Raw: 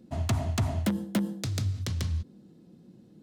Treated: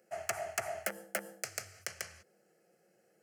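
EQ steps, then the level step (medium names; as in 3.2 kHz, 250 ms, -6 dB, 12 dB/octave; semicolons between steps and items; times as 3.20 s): high-pass 670 Hz 12 dB/octave; static phaser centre 1 kHz, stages 6; +4.0 dB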